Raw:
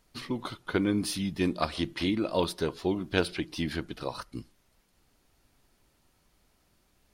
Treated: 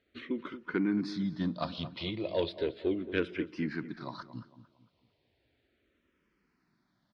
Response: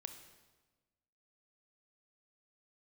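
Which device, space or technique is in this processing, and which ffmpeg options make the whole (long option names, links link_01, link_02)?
barber-pole phaser into a guitar amplifier: -filter_complex "[0:a]asplit=2[link_01][link_02];[link_02]afreqshift=-0.35[link_03];[link_01][link_03]amix=inputs=2:normalize=1,asoftclip=type=tanh:threshold=-18dB,highpass=100,equalizer=frequency=810:width_type=q:width=4:gain=-7,equalizer=frequency=1200:width_type=q:width=4:gain=-4,equalizer=frequency=2800:width_type=q:width=4:gain=-3,lowpass=frequency=4000:width=0.5412,lowpass=frequency=4000:width=1.3066,asplit=2[link_04][link_05];[link_05]adelay=226,lowpass=frequency=1800:poles=1,volume=-13dB,asplit=2[link_06][link_07];[link_07]adelay=226,lowpass=frequency=1800:poles=1,volume=0.39,asplit=2[link_08][link_09];[link_09]adelay=226,lowpass=frequency=1800:poles=1,volume=0.39,asplit=2[link_10][link_11];[link_11]adelay=226,lowpass=frequency=1800:poles=1,volume=0.39[link_12];[link_04][link_06][link_08][link_10][link_12]amix=inputs=5:normalize=0"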